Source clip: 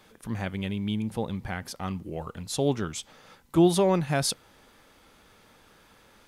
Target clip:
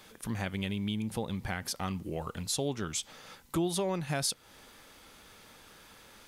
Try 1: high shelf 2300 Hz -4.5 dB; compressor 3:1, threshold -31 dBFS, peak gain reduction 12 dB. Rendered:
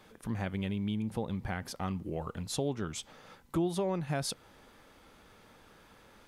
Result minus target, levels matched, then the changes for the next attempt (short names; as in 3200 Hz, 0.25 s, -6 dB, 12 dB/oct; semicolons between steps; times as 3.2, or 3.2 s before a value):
4000 Hz band -4.0 dB
change: high shelf 2300 Hz +6.5 dB